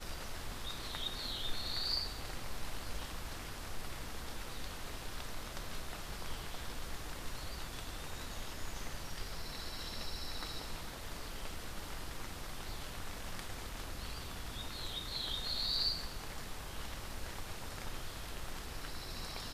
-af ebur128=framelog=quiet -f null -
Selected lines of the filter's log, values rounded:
Integrated loudness:
  I:         -42.1 LUFS
  Threshold: -52.1 LUFS
Loudness range:
  LRA:         6.7 LU
  Threshold: -62.1 LUFS
  LRA low:   -45.1 LUFS
  LRA high:  -38.4 LUFS